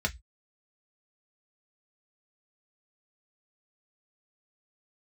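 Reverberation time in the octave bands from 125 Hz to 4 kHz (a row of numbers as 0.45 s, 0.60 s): 0.30 s, 0.15 s, 0.10 s, 0.15 s, 0.15 s, 0.20 s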